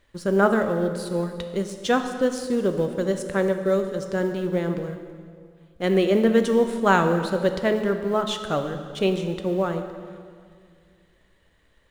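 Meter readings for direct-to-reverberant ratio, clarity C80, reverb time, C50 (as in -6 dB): 6.5 dB, 9.0 dB, 2.1 s, 8.0 dB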